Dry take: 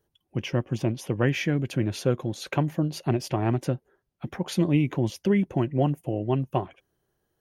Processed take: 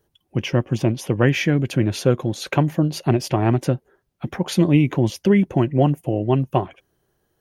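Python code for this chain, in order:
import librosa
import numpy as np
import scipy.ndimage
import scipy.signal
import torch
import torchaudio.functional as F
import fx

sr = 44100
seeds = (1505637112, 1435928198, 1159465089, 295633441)

y = x * 10.0 ** (6.5 / 20.0)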